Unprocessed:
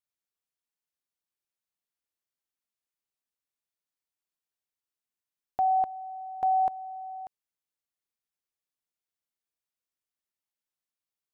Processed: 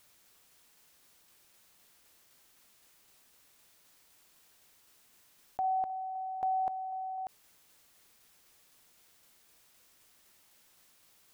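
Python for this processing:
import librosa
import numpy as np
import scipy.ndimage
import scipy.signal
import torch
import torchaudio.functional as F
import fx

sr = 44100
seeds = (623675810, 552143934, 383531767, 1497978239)

y = fx.tremolo_shape(x, sr, shape='saw_down', hz=3.9, depth_pct=30)
y = fx.env_flatten(y, sr, amount_pct=50)
y = F.gain(torch.from_numpy(y), -6.0).numpy()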